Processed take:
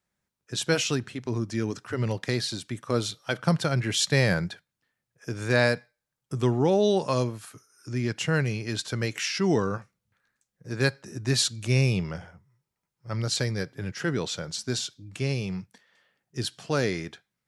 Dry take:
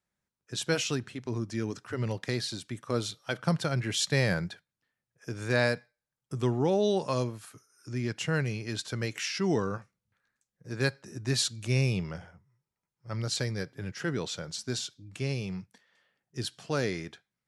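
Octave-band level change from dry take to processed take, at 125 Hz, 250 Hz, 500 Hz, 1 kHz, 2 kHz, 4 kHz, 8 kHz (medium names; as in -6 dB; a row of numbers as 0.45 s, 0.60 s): +4.0 dB, +4.0 dB, +4.0 dB, +4.0 dB, +4.0 dB, +4.0 dB, +4.0 dB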